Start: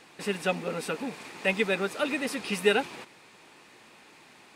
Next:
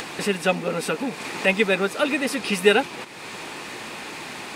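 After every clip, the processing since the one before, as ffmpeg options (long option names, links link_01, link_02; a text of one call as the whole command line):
ffmpeg -i in.wav -af "acompressor=mode=upward:threshold=-29dB:ratio=2.5,volume=6.5dB" out.wav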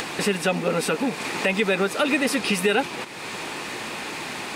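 ffmpeg -i in.wav -af "alimiter=limit=-14dB:level=0:latency=1:release=64,volume=3dB" out.wav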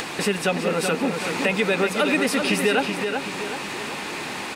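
ffmpeg -i in.wav -filter_complex "[0:a]asplit=2[link_01][link_02];[link_02]adelay=378,lowpass=frequency=4400:poles=1,volume=-5.5dB,asplit=2[link_03][link_04];[link_04]adelay=378,lowpass=frequency=4400:poles=1,volume=0.47,asplit=2[link_05][link_06];[link_06]adelay=378,lowpass=frequency=4400:poles=1,volume=0.47,asplit=2[link_07][link_08];[link_08]adelay=378,lowpass=frequency=4400:poles=1,volume=0.47,asplit=2[link_09][link_10];[link_10]adelay=378,lowpass=frequency=4400:poles=1,volume=0.47,asplit=2[link_11][link_12];[link_12]adelay=378,lowpass=frequency=4400:poles=1,volume=0.47[link_13];[link_01][link_03][link_05][link_07][link_09][link_11][link_13]amix=inputs=7:normalize=0" out.wav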